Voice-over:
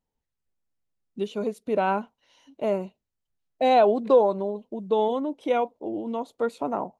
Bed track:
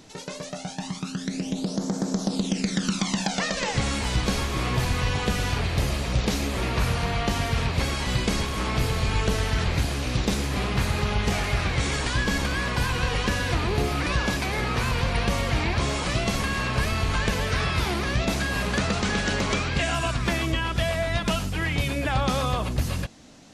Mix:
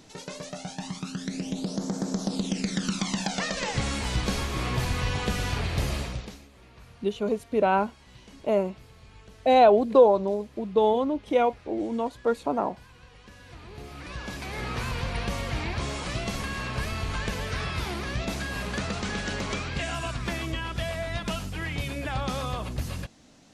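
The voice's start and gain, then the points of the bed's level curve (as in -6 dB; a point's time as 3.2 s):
5.85 s, +1.5 dB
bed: 6.01 s -3 dB
6.49 s -26.5 dB
13.18 s -26.5 dB
14.67 s -6 dB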